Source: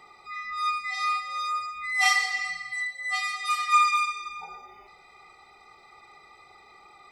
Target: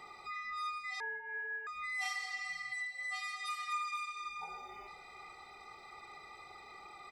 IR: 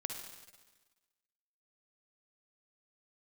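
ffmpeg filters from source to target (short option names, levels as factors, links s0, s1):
-filter_complex "[0:a]acompressor=threshold=0.00794:ratio=3,aecho=1:1:476|952|1428:0.141|0.0523|0.0193,asettb=1/sr,asplit=3[s0][s1][s2];[s0]atrim=end=1.004[s3];[s1]atrim=start=1:end=1.67,asetpts=PTS-STARTPTS,afade=t=in:d=0.004:c=qsin,afade=t=out:st=0.666:d=0.004:c=qsin,lowpass=f=2500:t=q:w=0.5098,lowpass=f=2500:t=q:w=0.6013,lowpass=f=2500:t=q:w=0.9,lowpass=f=2500:t=q:w=2.563,afreqshift=-2900[s4];[s2]atrim=start=1.666[s5];[s3][s4]acrossfade=d=0.004:c1=hsin:c2=qsin[s6];[s6][s5]acrossfade=d=0.004:c1=qsin:c2=hsin"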